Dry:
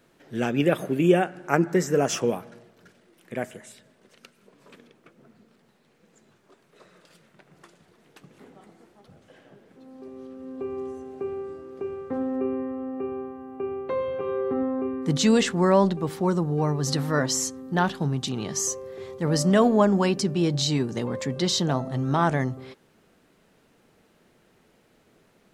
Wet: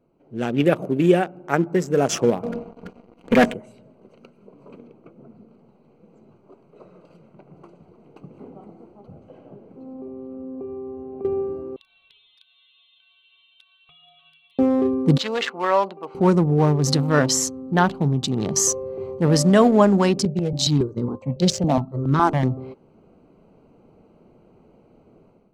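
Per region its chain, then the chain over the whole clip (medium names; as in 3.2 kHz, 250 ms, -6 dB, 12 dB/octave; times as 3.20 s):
2.43–3.54 s: distance through air 64 m + comb 4.2 ms + waveshaping leveller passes 3
9.93–11.25 s: compression 4:1, threshold -40 dBFS + distance through air 170 m
11.76–14.59 s: frequency inversion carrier 3.9 kHz + compression, threshold -34 dBFS + Shepard-style flanger falling 1.8 Hz
15.18–16.15 s: high-pass 810 Hz + distance through air 180 m
20.25–22.43 s: expander -26 dBFS + stepped phaser 7.2 Hz 300–2700 Hz
whole clip: local Wiener filter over 25 samples; level rider gain up to 11.5 dB; trim -2 dB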